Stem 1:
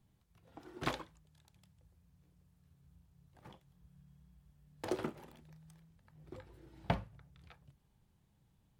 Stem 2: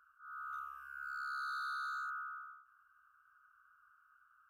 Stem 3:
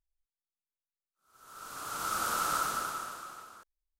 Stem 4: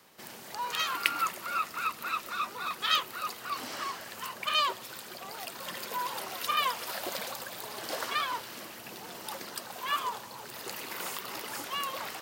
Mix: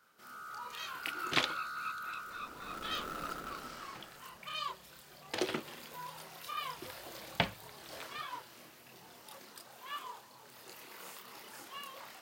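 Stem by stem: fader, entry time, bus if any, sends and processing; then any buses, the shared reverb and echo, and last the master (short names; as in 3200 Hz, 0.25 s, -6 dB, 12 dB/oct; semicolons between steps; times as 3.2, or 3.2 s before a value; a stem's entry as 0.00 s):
+2.0 dB, 0.50 s, no send, weighting filter D
-2.0 dB, 0.00 s, no send, dry
-0.5 dB, 0.70 s, no send, median filter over 41 samples; bell 110 Hz -12 dB 0.43 oct
-9.0 dB, 0.00 s, no send, chorus voices 6, 0.5 Hz, delay 28 ms, depth 4.7 ms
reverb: off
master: dry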